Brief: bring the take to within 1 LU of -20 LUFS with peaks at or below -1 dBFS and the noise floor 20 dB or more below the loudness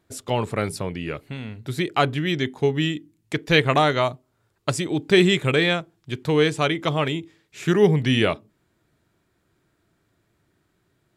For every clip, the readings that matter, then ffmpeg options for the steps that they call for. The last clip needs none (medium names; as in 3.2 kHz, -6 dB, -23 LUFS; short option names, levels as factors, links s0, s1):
loudness -22.0 LUFS; peak level -4.5 dBFS; loudness target -20.0 LUFS
-> -af "volume=1.26"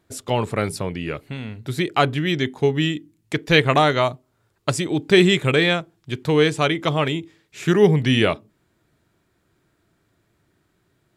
loudness -20.0 LUFS; peak level -2.5 dBFS; noise floor -68 dBFS